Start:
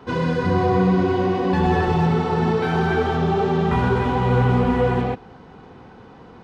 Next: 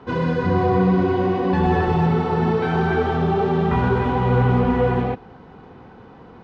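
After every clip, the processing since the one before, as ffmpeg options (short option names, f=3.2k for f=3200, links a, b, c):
-af "aemphasis=mode=reproduction:type=50fm"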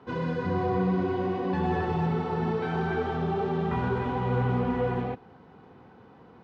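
-af "highpass=75,volume=-8.5dB"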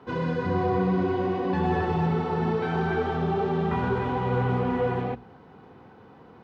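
-af "bandreject=f=60:t=h:w=6,bandreject=f=120:t=h:w=6,bandreject=f=180:t=h:w=6,bandreject=f=240:t=h:w=6,volume=2.5dB"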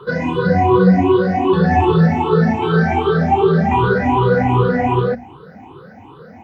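-af "afftfilt=real='re*pow(10,24/40*sin(2*PI*(0.64*log(max(b,1)*sr/1024/100)/log(2)-(2.6)*(pts-256)/sr)))':imag='im*pow(10,24/40*sin(2*PI*(0.64*log(max(b,1)*sr/1024/100)/log(2)-(2.6)*(pts-256)/sr)))':win_size=1024:overlap=0.75,volume=5.5dB"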